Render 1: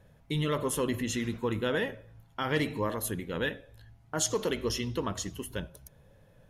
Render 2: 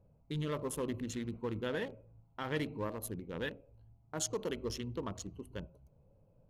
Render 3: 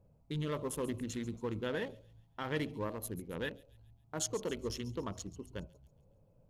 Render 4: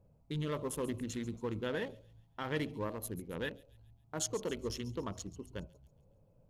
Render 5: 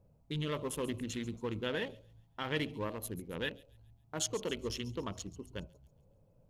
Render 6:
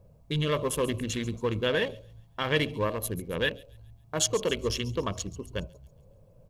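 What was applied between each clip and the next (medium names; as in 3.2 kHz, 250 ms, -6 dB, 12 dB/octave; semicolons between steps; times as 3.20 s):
local Wiener filter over 25 samples; trim -6.5 dB
feedback echo behind a high-pass 138 ms, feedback 47%, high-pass 5.1 kHz, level -13.5 dB
no audible change
dynamic bell 2.9 kHz, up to +7 dB, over -59 dBFS, Q 1.5
comb 1.8 ms, depth 31%; trim +8.5 dB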